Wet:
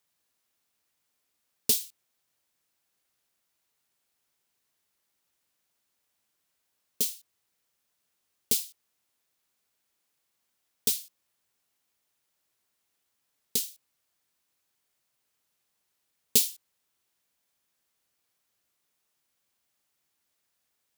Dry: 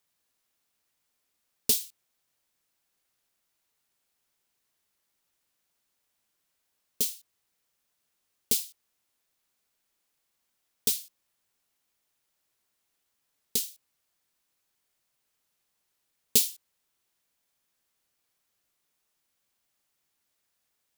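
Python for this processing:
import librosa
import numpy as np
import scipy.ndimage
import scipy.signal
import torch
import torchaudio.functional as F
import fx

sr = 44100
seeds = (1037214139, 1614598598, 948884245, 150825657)

y = scipy.signal.sosfilt(scipy.signal.butter(2, 44.0, 'highpass', fs=sr, output='sos'), x)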